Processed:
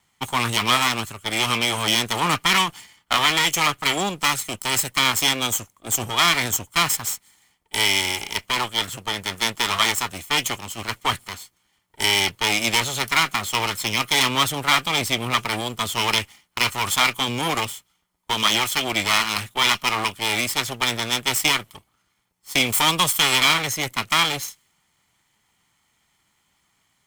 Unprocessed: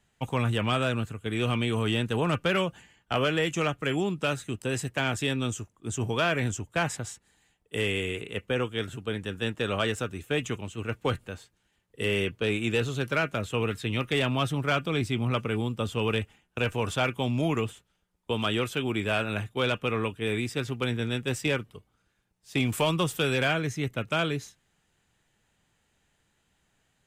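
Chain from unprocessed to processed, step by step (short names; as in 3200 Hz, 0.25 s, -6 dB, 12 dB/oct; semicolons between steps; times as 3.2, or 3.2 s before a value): minimum comb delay 0.92 ms; tilt +3 dB/oct; mismatched tape noise reduction decoder only; gain +8.5 dB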